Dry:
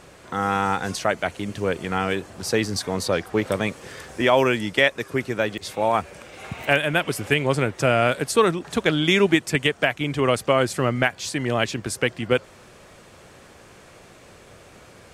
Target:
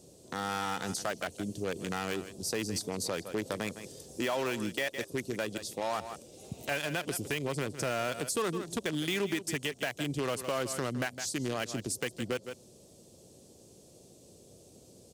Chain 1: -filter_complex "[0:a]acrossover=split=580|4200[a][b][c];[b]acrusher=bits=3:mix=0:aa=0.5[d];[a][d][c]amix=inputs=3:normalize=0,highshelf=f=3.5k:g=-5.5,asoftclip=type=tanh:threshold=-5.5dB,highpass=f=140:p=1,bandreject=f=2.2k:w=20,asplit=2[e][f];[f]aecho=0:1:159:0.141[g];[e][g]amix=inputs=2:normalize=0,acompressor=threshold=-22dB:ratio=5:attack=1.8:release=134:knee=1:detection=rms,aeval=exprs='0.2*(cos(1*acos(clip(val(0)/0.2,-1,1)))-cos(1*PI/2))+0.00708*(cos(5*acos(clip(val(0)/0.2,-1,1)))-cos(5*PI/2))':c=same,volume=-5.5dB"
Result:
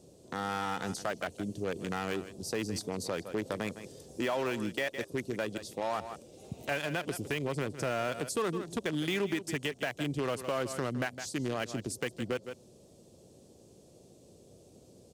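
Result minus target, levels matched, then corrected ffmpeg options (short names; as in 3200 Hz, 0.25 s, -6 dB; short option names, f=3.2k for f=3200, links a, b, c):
8000 Hz band -5.0 dB
-filter_complex "[0:a]acrossover=split=580|4200[a][b][c];[b]acrusher=bits=3:mix=0:aa=0.5[d];[a][d][c]amix=inputs=3:normalize=0,highshelf=f=3.5k:g=2,asoftclip=type=tanh:threshold=-5.5dB,highpass=f=140:p=1,bandreject=f=2.2k:w=20,asplit=2[e][f];[f]aecho=0:1:159:0.141[g];[e][g]amix=inputs=2:normalize=0,acompressor=threshold=-22dB:ratio=5:attack=1.8:release=134:knee=1:detection=rms,aeval=exprs='0.2*(cos(1*acos(clip(val(0)/0.2,-1,1)))-cos(1*PI/2))+0.00708*(cos(5*acos(clip(val(0)/0.2,-1,1)))-cos(5*PI/2))':c=same,volume=-5.5dB"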